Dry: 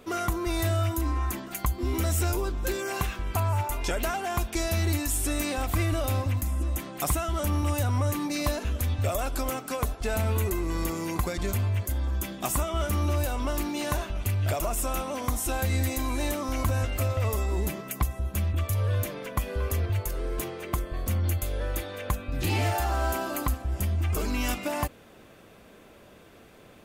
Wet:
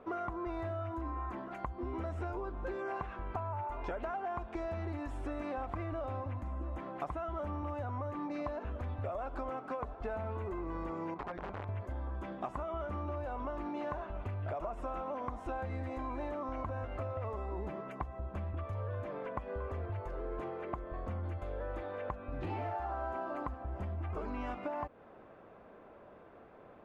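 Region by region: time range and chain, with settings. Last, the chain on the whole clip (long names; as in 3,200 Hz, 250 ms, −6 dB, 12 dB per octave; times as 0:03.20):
0:11.14–0:11.69: low-pass filter 3,300 Hz + tuned comb filter 180 Hz, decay 0.19 s, mix 70% + wrap-around overflow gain 29.5 dB
whole clip: Chebyshev low-pass filter 940 Hz, order 2; low-shelf EQ 440 Hz −11.5 dB; downward compressor 5 to 1, threshold −39 dBFS; level +3.5 dB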